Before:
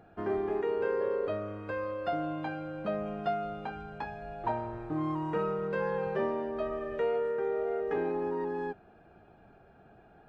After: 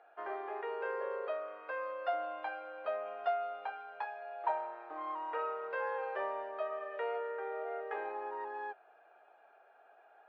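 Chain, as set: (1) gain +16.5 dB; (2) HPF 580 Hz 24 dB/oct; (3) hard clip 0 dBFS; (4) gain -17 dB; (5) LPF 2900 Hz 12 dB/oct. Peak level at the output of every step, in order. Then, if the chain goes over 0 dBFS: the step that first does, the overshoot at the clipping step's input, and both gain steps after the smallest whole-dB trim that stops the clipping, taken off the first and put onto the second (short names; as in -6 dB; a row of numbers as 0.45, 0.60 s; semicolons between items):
-4.0, -5.0, -5.0, -22.0, -22.0 dBFS; no overload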